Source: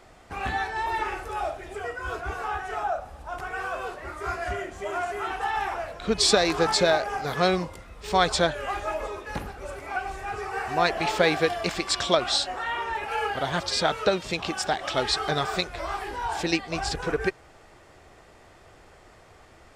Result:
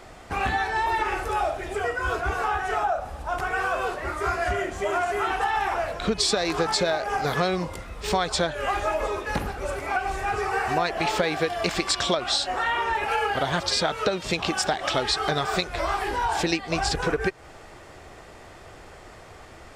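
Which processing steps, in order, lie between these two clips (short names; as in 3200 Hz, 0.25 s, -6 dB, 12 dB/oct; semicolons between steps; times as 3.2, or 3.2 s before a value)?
compressor 6:1, threshold -28 dBFS, peak gain reduction 13 dB; gain +7 dB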